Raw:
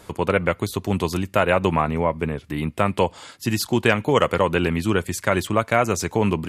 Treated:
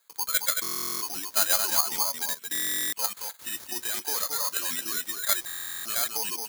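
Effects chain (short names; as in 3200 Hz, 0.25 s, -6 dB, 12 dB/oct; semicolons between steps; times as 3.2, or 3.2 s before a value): spectral noise reduction 10 dB; gate with hold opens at -43 dBFS; weighting filter ITU-R 468; de-esser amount 55%; bell 1600 Hz +4.5 dB 0.46 oct; level quantiser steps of 19 dB; overdrive pedal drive 20 dB, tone 1500 Hz, clips at -19.5 dBFS; on a send: echo 0.223 s -5 dB; on the sum: careless resampling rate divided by 8×, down filtered, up zero stuff; stuck buffer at 0.62/2.53/5.46, samples 1024, times 16; gain -6.5 dB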